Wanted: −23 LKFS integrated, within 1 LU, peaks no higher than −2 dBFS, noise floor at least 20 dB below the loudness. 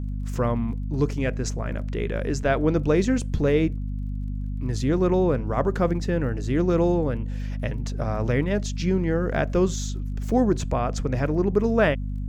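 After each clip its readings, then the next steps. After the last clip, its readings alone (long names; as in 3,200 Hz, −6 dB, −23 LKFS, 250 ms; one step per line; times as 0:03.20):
crackle rate 21 per second; mains hum 50 Hz; hum harmonics up to 250 Hz; level of the hum −26 dBFS; integrated loudness −24.5 LKFS; sample peak −7.5 dBFS; target loudness −23.0 LKFS
→ click removal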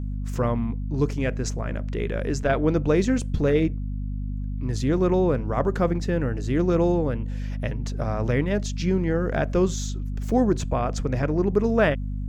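crackle rate 0.49 per second; mains hum 50 Hz; hum harmonics up to 250 Hz; level of the hum −26 dBFS
→ hum removal 50 Hz, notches 5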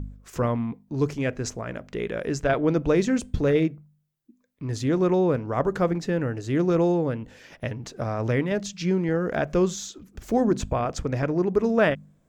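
mains hum none found; integrated loudness −25.0 LKFS; sample peak −9.0 dBFS; target loudness −23.0 LKFS
→ level +2 dB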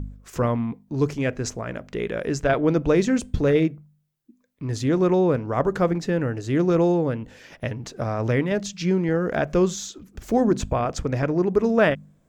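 integrated loudness −23.0 LKFS; sample peak −7.0 dBFS; background noise floor −63 dBFS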